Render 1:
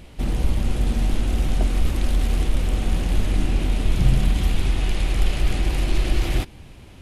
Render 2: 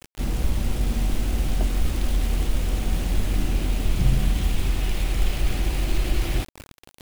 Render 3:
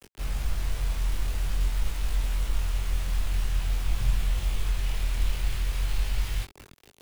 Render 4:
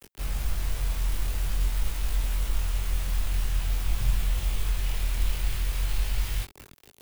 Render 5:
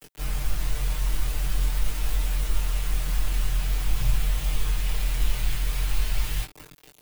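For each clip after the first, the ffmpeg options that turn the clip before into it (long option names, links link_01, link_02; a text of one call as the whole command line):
ffmpeg -i in.wav -af "acrusher=bits=5:mix=0:aa=0.000001,volume=-2.5dB" out.wav
ffmpeg -i in.wav -filter_complex "[0:a]equalizer=frequency=400:width_type=o:width=0.32:gain=4,acrossover=split=150|1500[link_01][link_02][link_03];[link_02]aeval=exprs='(mod(53.1*val(0)+1,2)-1)/53.1':channel_layout=same[link_04];[link_01][link_04][link_03]amix=inputs=3:normalize=0,flanger=delay=19.5:depth=5.8:speed=0.47,volume=-2.5dB" out.wav
ffmpeg -i in.wav -af "highshelf=frequency=11000:gain=9" out.wav
ffmpeg -i in.wav -af "aecho=1:1:6.6:0.9" out.wav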